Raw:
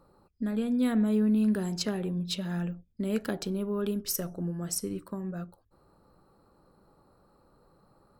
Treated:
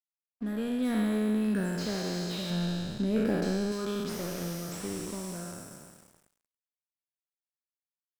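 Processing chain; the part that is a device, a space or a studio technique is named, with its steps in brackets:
peak hold with a decay on every bin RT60 2.86 s
0:02.50–0:03.72: spectral tilt −2 dB per octave
early transistor amplifier (dead-zone distortion −45 dBFS; slew-rate limiting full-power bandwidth 73 Hz)
level −3.5 dB

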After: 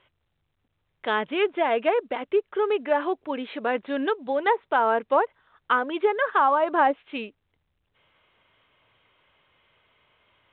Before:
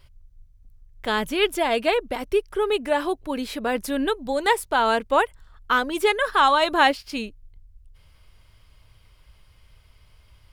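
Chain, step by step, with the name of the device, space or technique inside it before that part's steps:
low-pass filter 8,900 Hz 24 dB per octave
treble cut that deepens with the level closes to 1,100 Hz, closed at −15 dBFS
telephone (band-pass filter 290–3,500 Hz; mu-law 64 kbit/s 8,000 Hz)

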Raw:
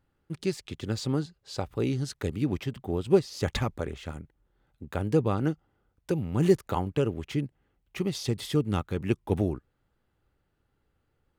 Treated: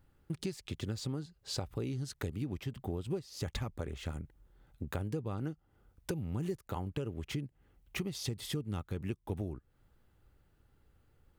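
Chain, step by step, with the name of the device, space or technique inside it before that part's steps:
ASMR close-microphone chain (low-shelf EQ 120 Hz +7.5 dB; downward compressor 6 to 1, threshold −37 dBFS, peak gain reduction 21 dB; high-shelf EQ 8,700 Hz +6.5 dB)
level +2 dB

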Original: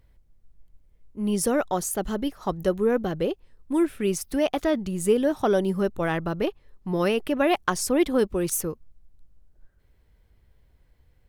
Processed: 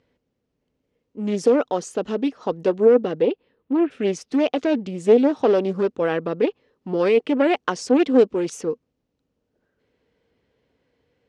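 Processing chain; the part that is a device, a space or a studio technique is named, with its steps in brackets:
0:03.22–0:03.90: low-pass filter 5,200 Hz → 2,800 Hz 24 dB per octave
full-range speaker at full volume (highs frequency-modulated by the lows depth 0.29 ms; loudspeaker in its box 180–6,500 Hz, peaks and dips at 260 Hz +8 dB, 470 Hz +10 dB, 2,800 Hz +4 dB)

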